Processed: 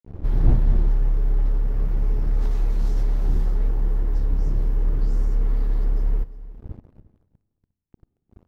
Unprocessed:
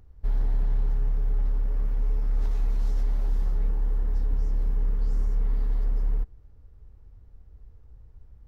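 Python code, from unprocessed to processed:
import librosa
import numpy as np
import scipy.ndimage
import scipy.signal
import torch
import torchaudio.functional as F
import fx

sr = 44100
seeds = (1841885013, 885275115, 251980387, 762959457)

p1 = fx.dmg_wind(x, sr, seeds[0], corner_hz=95.0, level_db=-36.0)
p2 = fx.peak_eq(p1, sr, hz=350.0, db=5.0, octaves=0.33)
p3 = np.sign(p2) * np.maximum(np.abs(p2) - 10.0 ** (-37.5 / 20.0), 0.0)
p4 = p3 + fx.echo_single(p3, sr, ms=353, db=-18.5, dry=0)
p5 = fx.rev_schroeder(p4, sr, rt60_s=1.7, comb_ms=31, drr_db=18.0)
y = p5 * librosa.db_to_amplitude(5.0)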